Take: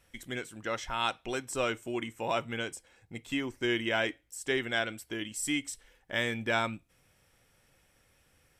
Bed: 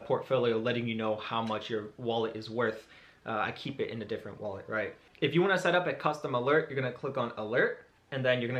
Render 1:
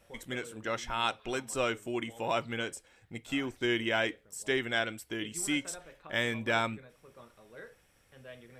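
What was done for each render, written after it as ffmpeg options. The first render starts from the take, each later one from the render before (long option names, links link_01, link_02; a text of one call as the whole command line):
ffmpeg -i in.wav -i bed.wav -filter_complex "[1:a]volume=-21.5dB[link_01];[0:a][link_01]amix=inputs=2:normalize=0" out.wav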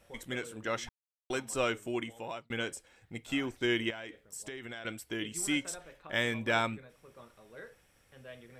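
ffmpeg -i in.wav -filter_complex "[0:a]asettb=1/sr,asplit=3[link_01][link_02][link_03];[link_01]atrim=end=3.904[link_04];[link_02]atrim=start=3.9:end=4.85,asetpts=PTS-STARTPTS,afade=type=in:duration=0.004:curve=qsin,afade=type=out:start_time=0.946:duration=0.004:curve=qsin,acompressor=threshold=-38dB:ratio=16:attack=3.2:release=140:knee=1:detection=peak[link_05];[link_03]atrim=start=4.846[link_06];[link_04][link_05]acrossfade=duration=0.004:curve1=hsin:curve2=qsin[link_07];[link_07][link_06]acrossfade=duration=0.004:curve1=qsin:curve2=hsin,asplit=4[link_08][link_09][link_10][link_11];[link_08]atrim=end=0.89,asetpts=PTS-STARTPTS,afade=type=out:start_time=0.886:duration=0.004:curve=hsin[link_12];[link_09]atrim=start=0.89:end=1.3,asetpts=PTS-STARTPTS,volume=0[link_13];[link_10]atrim=start=1.3:end=2.5,asetpts=PTS-STARTPTS,afade=type=in:duration=0.004:curve=hsin,afade=type=out:start_time=0.65:duration=0.55[link_14];[link_11]atrim=start=2.5,asetpts=PTS-STARTPTS,afade=type=in:duration=0.004:curve=hsin[link_15];[link_12][link_13][link_14][link_15]concat=n=4:v=0:a=1" out.wav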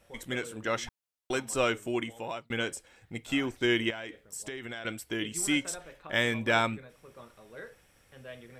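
ffmpeg -i in.wav -af "dynaudnorm=framelen=110:gausssize=3:maxgain=3.5dB" out.wav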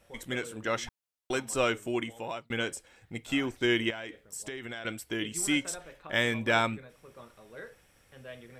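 ffmpeg -i in.wav -af anull out.wav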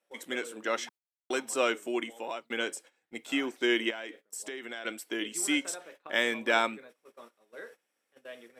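ffmpeg -i in.wav -af "highpass=frequency=250:width=0.5412,highpass=frequency=250:width=1.3066,agate=range=-16dB:threshold=-51dB:ratio=16:detection=peak" out.wav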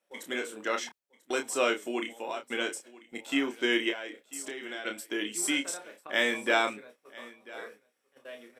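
ffmpeg -i in.wav -filter_complex "[0:a]asplit=2[link_01][link_02];[link_02]adelay=29,volume=-6dB[link_03];[link_01][link_03]amix=inputs=2:normalize=0,aecho=1:1:991:0.0944" out.wav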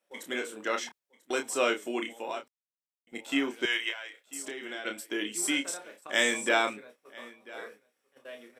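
ffmpeg -i in.wav -filter_complex "[0:a]asettb=1/sr,asplit=3[link_01][link_02][link_03];[link_01]atrim=end=3.654[link_04];[link_02]atrim=start=3.65:end=4.27,asetpts=PTS-STARTPTS,afade=type=in:duration=0.004:curve=qsin,afade=type=out:start_time=0.616:duration=0.004:curve=qsin,highpass=930[link_05];[link_03]atrim=start=4.266[link_06];[link_04][link_05]acrossfade=duration=0.004:curve1=hsin:curve2=qsin[link_07];[link_07][link_06]acrossfade=duration=0.004:curve1=qsin:curve2=hsin,asettb=1/sr,asplit=3[link_08][link_09][link_10];[link_08]atrim=end=6.024[link_11];[link_09]atrim=start=6.02:end=6.49,asetpts=PTS-STARTPTS,afade=type=in:duration=0.004:curve=qsin,afade=type=out:start_time=0.466:duration=0.004:curve=qsin,equalizer=frequency=7400:width=1.2:gain=13.5[link_12];[link_10]atrim=start=6.486[link_13];[link_11][link_12]acrossfade=duration=0.004:curve1=hsin:curve2=qsin[link_14];[link_14][link_13]acrossfade=duration=0.004:curve1=qsin:curve2=hsin,asplit=3[link_15][link_16][link_17];[link_15]atrim=end=2.48,asetpts=PTS-STARTPTS,afade=type=out:start_time=2.476:duration=0.004:curve=hsin[link_18];[link_16]atrim=start=2.48:end=3.07,asetpts=PTS-STARTPTS,volume=0[link_19];[link_17]atrim=start=3.07,asetpts=PTS-STARTPTS,afade=type=in:duration=0.004:curve=hsin[link_20];[link_18][link_19][link_20]concat=n=3:v=0:a=1" out.wav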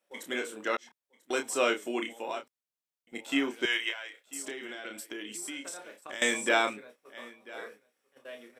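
ffmpeg -i in.wav -filter_complex "[0:a]asettb=1/sr,asplit=3[link_01][link_02][link_03];[link_01]atrim=end=4.544[link_04];[link_02]atrim=start=4.54:end=6.22,asetpts=PTS-STARTPTS,afade=type=in:duration=0.004:curve=qsin,afade=type=out:start_time=1.676:duration=0.004:curve=qsin,acompressor=threshold=-36dB:ratio=6:attack=3.2:release=140:knee=1:detection=peak[link_05];[link_03]atrim=start=6.216[link_06];[link_04][link_05]acrossfade=duration=0.004:curve1=hsin:curve2=qsin[link_07];[link_07][link_06]acrossfade=duration=0.004:curve1=qsin:curve2=hsin,asplit=2[link_08][link_09];[link_08]atrim=end=0.77,asetpts=PTS-STARTPTS,afade=type=out:start_time=0.766:duration=0.004:curve=hsin[link_10];[link_09]atrim=start=0.77,asetpts=PTS-STARTPTS,afade=type=in:duration=0.65:curve=qsin[link_11];[link_10][link_11]concat=n=2:v=0:a=1" out.wav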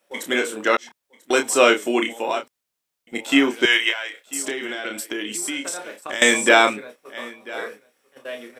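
ffmpeg -i in.wav -af "volume=12dB,alimiter=limit=-1dB:level=0:latency=1" out.wav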